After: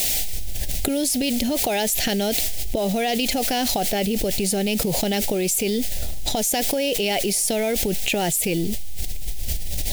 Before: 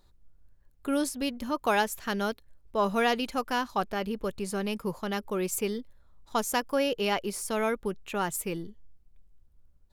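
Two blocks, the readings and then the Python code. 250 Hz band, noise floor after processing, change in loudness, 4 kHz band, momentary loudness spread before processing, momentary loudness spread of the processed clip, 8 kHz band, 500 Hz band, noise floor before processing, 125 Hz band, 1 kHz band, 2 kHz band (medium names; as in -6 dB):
+8.0 dB, -24 dBFS, +8.0 dB, +12.0 dB, 7 LU, 8 LU, +15.5 dB, +6.0 dB, -61 dBFS, +11.0 dB, +2.0 dB, +4.5 dB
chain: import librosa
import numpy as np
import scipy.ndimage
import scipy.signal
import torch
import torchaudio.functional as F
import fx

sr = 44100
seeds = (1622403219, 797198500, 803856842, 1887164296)

p1 = fx.recorder_agc(x, sr, target_db=-16.5, rise_db_per_s=72.0, max_gain_db=30)
p2 = fx.quant_dither(p1, sr, seeds[0], bits=6, dither='triangular')
p3 = p1 + F.gain(torch.from_numpy(p2), -4.5).numpy()
p4 = fx.curve_eq(p3, sr, hz=(510.0, 740.0, 1100.0, 2000.0, 3500.0), db=(0, 4, -23, 1, 5))
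p5 = fx.env_flatten(p4, sr, amount_pct=100)
y = F.gain(torch.from_numpy(p5), -11.0).numpy()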